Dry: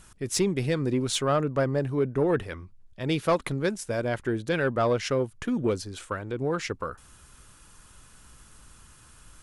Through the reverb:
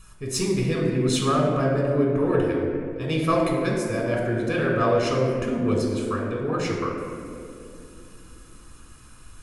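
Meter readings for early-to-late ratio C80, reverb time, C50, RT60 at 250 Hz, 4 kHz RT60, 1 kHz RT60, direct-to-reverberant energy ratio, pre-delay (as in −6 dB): 3.0 dB, 2.6 s, 1.5 dB, 4.3 s, 1.2 s, 2.0 s, −2.0 dB, 3 ms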